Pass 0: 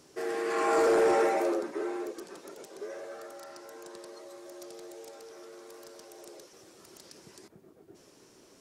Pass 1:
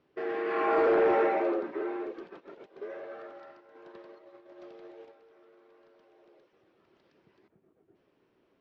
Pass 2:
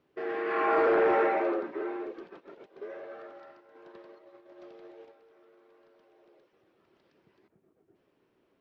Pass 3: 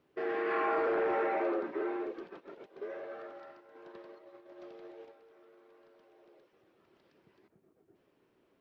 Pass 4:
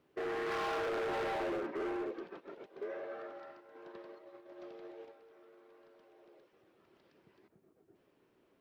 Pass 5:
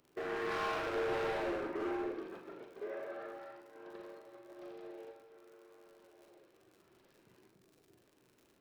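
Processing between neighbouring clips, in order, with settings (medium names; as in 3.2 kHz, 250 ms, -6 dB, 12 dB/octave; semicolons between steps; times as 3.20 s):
low-pass 3.1 kHz 24 dB/octave; gate -46 dBFS, range -11 dB
dynamic bell 1.5 kHz, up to +4 dB, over -39 dBFS, Q 0.84; trim -1 dB
compression, threshold -28 dBFS, peak gain reduction 7 dB
overload inside the chain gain 34 dB
crackle 73 per s -51 dBFS; reverberation RT60 0.50 s, pre-delay 39 ms, DRR 3 dB; trim -1.5 dB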